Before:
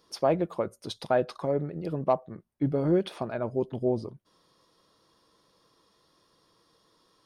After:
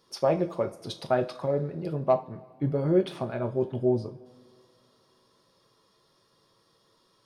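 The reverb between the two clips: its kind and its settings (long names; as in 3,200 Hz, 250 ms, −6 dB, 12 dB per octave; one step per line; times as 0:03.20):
coupled-rooms reverb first 0.3 s, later 2.5 s, from −21 dB, DRR 5.5 dB
level −1 dB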